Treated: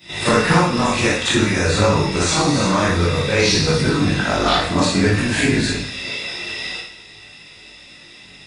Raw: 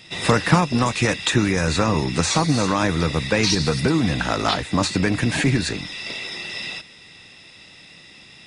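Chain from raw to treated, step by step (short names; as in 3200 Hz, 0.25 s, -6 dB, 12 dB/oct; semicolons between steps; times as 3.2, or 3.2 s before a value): short-time reversal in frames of 0.116 s; chorus voices 2, 0.54 Hz, delay 21 ms, depth 2.1 ms; two-slope reverb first 0.61 s, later 2.3 s, DRR 1.5 dB; gain +7.5 dB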